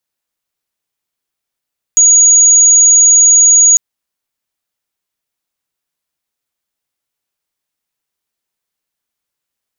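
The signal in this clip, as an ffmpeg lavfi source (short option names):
-f lavfi -i "sine=f=6740:d=1.8:r=44100,volume=15.06dB"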